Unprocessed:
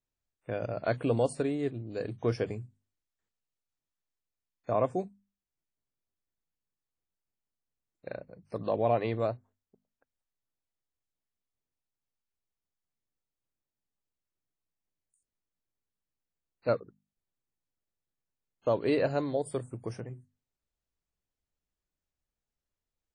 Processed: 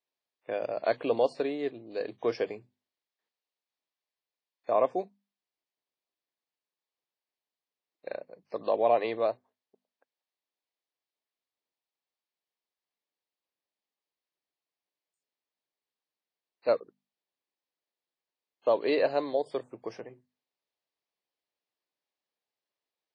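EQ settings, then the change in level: HPF 430 Hz 12 dB/oct; Chebyshev low-pass 4700 Hz, order 3; bell 1400 Hz -7.5 dB 0.27 oct; +4.5 dB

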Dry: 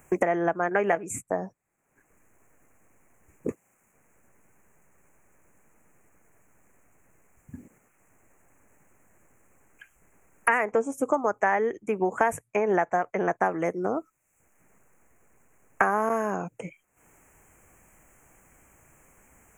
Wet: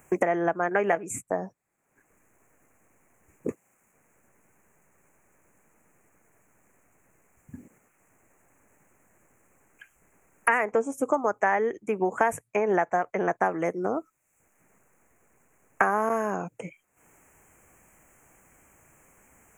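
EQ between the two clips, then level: low shelf 72 Hz -6.5 dB; 0.0 dB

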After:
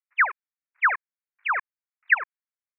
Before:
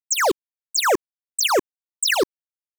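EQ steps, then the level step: HPF 1200 Hz 24 dB/oct; steep low-pass 2400 Hz 96 dB/oct; dynamic EQ 1700 Hz, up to +3 dB, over -36 dBFS, Q 2.8; +2.5 dB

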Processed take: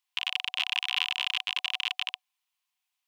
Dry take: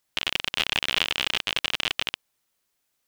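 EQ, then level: rippled Chebyshev high-pass 720 Hz, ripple 9 dB; -2.0 dB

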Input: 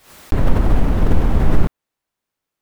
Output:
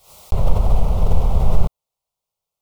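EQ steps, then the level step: fixed phaser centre 700 Hz, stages 4; 0.0 dB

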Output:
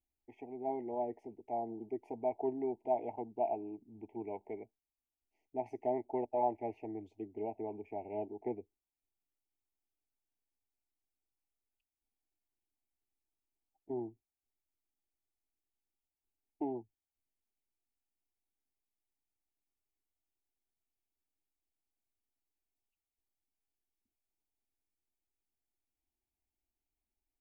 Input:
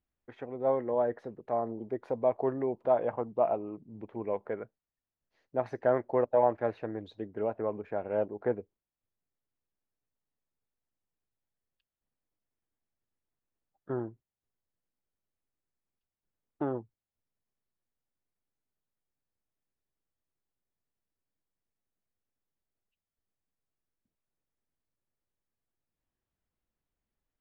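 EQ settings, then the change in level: elliptic band-stop 900–2200 Hz, stop band 50 dB; fixed phaser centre 790 Hz, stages 8; -2.5 dB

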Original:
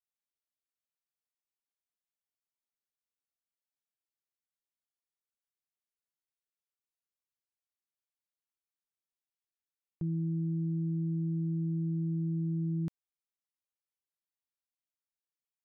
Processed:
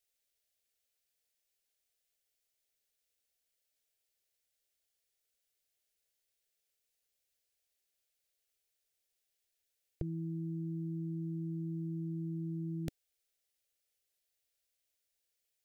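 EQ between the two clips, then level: bell 320 Hz -14 dB 0.27 oct; fixed phaser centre 430 Hz, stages 4; +12.0 dB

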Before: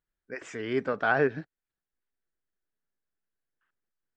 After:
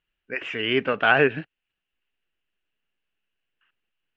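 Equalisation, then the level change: synth low-pass 2800 Hz, resonance Q 8.4; +4.5 dB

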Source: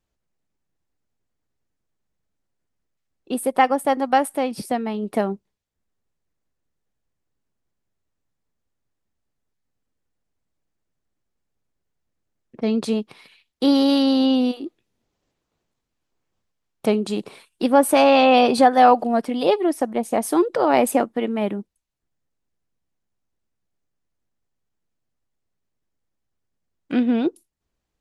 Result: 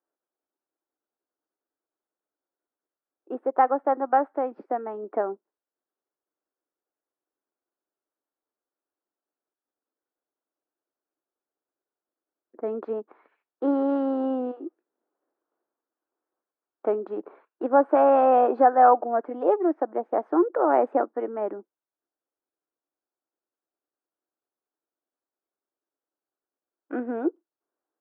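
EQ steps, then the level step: Chebyshev band-pass 310–1500 Hz, order 3; -2.5 dB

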